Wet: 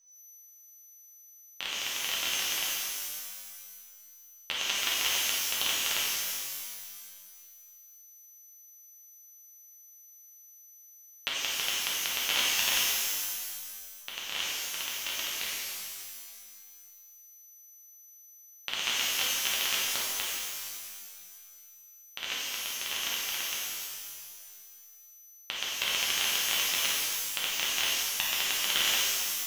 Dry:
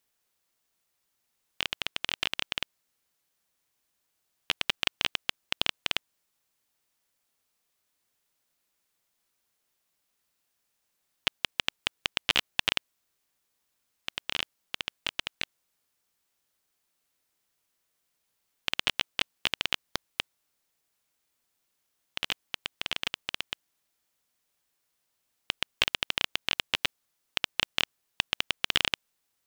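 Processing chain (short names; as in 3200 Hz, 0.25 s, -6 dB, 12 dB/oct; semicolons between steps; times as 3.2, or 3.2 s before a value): low shelf 280 Hz -10 dB; whine 6000 Hz -56 dBFS; shimmer reverb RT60 1.9 s, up +12 st, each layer -2 dB, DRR -6.5 dB; gain -7 dB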